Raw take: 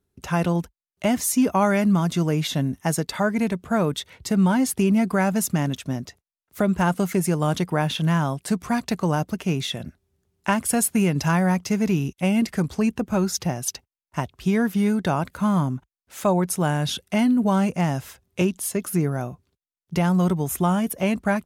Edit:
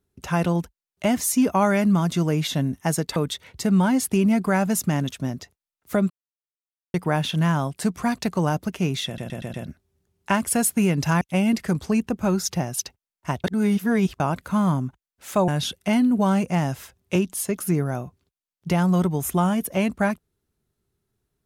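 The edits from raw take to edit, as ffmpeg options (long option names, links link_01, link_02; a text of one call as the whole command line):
ffmpeg -i in.wav -filter_complex "[0:a]asplit=12[link_01][link_02][link_03][link_04][link_05][link_06][link_07][link_08][link_09][link_10][link_11][link_12];[link_01]atrim=end=3.162[link_13];[link_02]atrim=start=3.818:end=6.76,asetpts=PTS-STARTPTS,afade=type=out:start_time=2.938:duration=0.004:curve=hsin[link_14];[link_03]atrim=start=6.76:end=7.6,asetpts=PTS-STARTPTS,volume=0[link_15];[link_04]atrim=start=7.6:end=9.842,asetpts=PTS-STARTPTS,afade=type=in:duration=0.004:curve=hsin[link_16];[link_05]atrim=start=9.718:end=9.842[link_17];[link_06]atrim=start=9.718:end=9.842[link_18];[link_07]atrim=start=9.718:end=9.842[link_19];[link_08]atrim=start=9.718:end=11.392[link_20];[link_09]atrim=start=12.098:end=14.332[link_21];[link_10]atrim=start=14.328:end=15.092,asetpts=PTS-STARTPTS,areverse[link_22];[link_11]atrim=start=15.088:end=16.372[link_23];[link_12]atrim=start=16.738[link_24];[link_14][link_15][link_16]concat=n=3:v=0:a=1[link_25];[link_13][link_25]acrossfade=duration=0.004:curve1=hsin:curve2=hsin[link_26];[link_26][link_17]acrossfade=duration=0.004:curve1=hsin:curve2=hsin[link_27];[link_27][link_18]acrossfade=duration=0.004:curve1=hsin:curve2=hsin[link_28];[link_28][link_19]acrossfade=duration=0.004:curve1=hsin:curve2=hsin[link_29];[link_29][link_20]acrossfade=duration=0.004:curve1=hsin:curve2=hsin[link_30];[link_30][link_21]acrossfade=duration=0.004:curve1=hsin:curve2=hsin[link_31];[link_31][link_22]acrossfade=duration=0.004:curve1=hsin:curve2=hsin[link_32];[link_32][link_23]acrossfade=duration=0.004:curve1=hsin:curve2=hsin[link_33];[link_33][link_24]acrossfade=duration=0.004:curve1=hsin:curve2=hsin" out.wav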